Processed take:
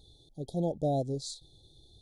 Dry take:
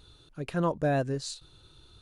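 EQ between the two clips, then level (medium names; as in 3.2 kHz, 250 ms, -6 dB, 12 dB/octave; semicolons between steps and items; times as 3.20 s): brick-wall FIR band-stop 870–3200 Hz; -2.5 dB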